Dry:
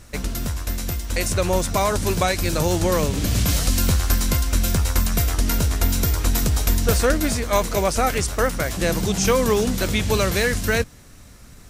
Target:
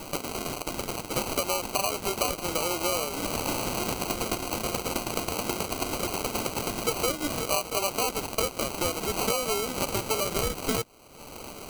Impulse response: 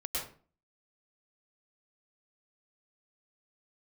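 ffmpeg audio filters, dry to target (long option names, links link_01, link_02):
-filter_complex "[0:a]bandreject=frequency=3100:width=14,asplit=2[link_01][link_02];[link_02]acrusher=bits=3:mix=0:aa=0.000001,volume=-6dB[link_03];[link_01][link_03]amix=inputs=2:normalize=0,highpass=430,lowpass=5500,acompressor=mode=upward:threshold=-26dB:ratio=2.5,acrusher=samples=25:mix=1:aa=0.000001,highshelf=frequency=3600:gain=10.5,acompressor=threshold=-22dB:ratio=4,volume=-2.5dB"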